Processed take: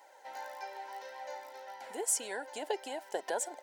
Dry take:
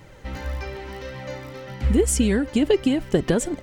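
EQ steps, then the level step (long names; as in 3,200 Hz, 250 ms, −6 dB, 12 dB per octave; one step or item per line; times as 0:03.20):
four-pole ladder high-pass 680 Hz, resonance 45%
Butterworth band-reject 1,200 Hz, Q 3.4
parametric band 2,600 Hz −10 dB 1.4 octaves
+4.0 dB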